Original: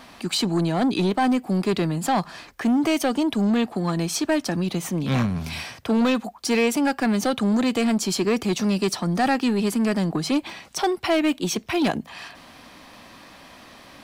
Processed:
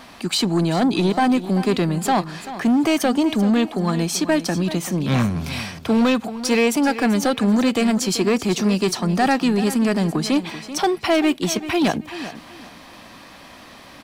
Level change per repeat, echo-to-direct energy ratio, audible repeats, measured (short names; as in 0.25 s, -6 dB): -12.0 dB, -13.0 dB, 2